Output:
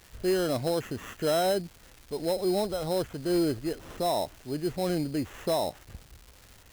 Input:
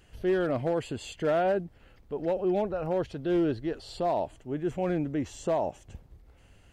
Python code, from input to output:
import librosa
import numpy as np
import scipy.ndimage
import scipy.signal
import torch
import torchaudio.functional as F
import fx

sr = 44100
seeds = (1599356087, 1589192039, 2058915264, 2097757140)

y = fx.sample_hold(x, sr, seeds[0], rate_hz=4600.0, jitter_pct=0)
y = fx.dmg_crackle(y, sr, seeds[1], per_s=480.0, level_db=-41.0)